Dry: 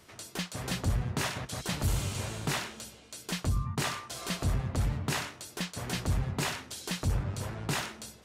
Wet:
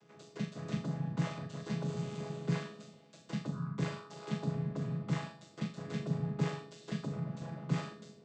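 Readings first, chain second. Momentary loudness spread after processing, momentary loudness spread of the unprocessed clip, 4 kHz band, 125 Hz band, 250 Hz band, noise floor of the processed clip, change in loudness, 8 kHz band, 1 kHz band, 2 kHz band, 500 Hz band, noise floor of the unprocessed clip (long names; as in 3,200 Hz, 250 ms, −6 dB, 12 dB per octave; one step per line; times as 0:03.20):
10 LU, 7 LU, −14.0 dB, −3.5 dB, +0.5 dB, −60 dBFS, −5.0 dB, −18.5 dB, −8.0 dB, −11.0 dB, −2.0 dB, −54 dBFS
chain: channel vocoder with a chord as carrier minor triad, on C#3
on a send: flutter between parallel walls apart 7 metres, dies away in 0.39 s
on the sum: level −1.5 dB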